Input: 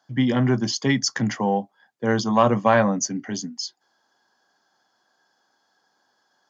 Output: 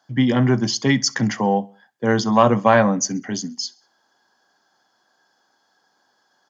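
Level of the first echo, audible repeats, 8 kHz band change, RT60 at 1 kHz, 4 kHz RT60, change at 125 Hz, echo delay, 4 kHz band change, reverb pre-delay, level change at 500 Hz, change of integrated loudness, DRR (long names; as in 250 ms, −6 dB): −24.0 dB, 2, can't be measured, no reverb audible, no reverb audible, +3.0 dB, 65 ms, +3.0 dB, no reverb audible, +3.0 dB, +3.0 dB, no reverb audible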